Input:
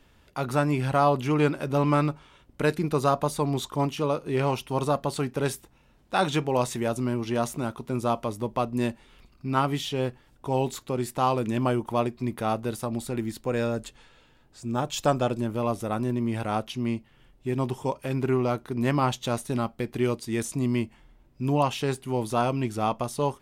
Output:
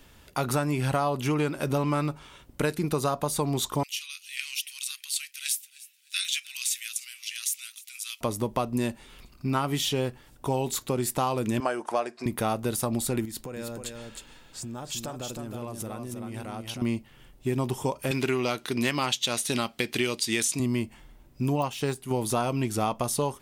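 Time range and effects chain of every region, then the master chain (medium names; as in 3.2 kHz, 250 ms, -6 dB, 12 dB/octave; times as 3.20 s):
3.83–8.21 s: steep high-pass 2.2 kHz + feedback delay 305 ms, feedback 36%, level -21 dB
11.60–12.26 s: cabinet simulation 440–9300 Hz, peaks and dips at 670 Hz +5 dB, 1.6 kHz +8 dB, 3.4 kHz -6 dB, 5.1 kHz +4 dB + band-stop 960 Hz, Q 27
13.25–16.82 s: compression, threshold -39 dBFS + delay 314 ms -5 dB
18.11–20.60 s: frequency weighting D + de-esser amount 20% + hard clipper -9.5 dBFS
21.56–22.11 s: de-esser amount 85% + upward expansion, over -33 dBFS
whole clip: treble shelf 5.6 kHz +10 dB; compression, threshold -27 dBFS; trim +4 dB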